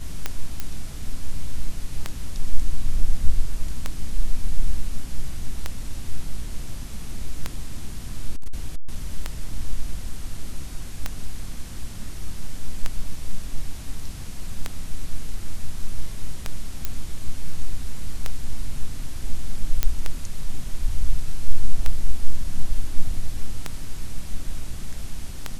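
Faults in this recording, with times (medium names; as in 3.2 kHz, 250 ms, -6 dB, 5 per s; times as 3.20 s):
tick 33 1/3 rpm -9 dBFS
0.60 s: pop -12 dBFS
8.31–8.96 s: clipped -17.5 dBFS
16.85 s: pop -10 dBFS
19.83 s: pop -6 dBFS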